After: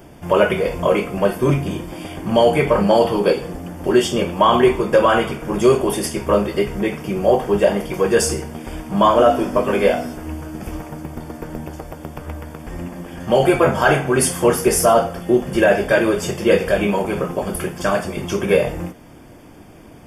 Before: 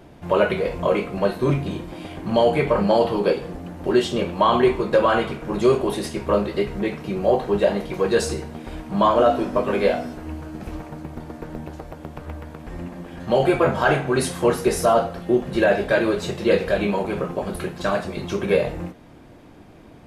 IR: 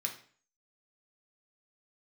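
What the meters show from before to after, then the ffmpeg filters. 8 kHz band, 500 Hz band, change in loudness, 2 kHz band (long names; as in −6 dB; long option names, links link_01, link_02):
+10.5 dB, +3.5 dB, +3.5 dB, +4.0 dB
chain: -af "asuperstop=centerf=4000:order=20:qfactor=5.5,highshelf=frequency=7100:gain=11.5,volume=3.5dB"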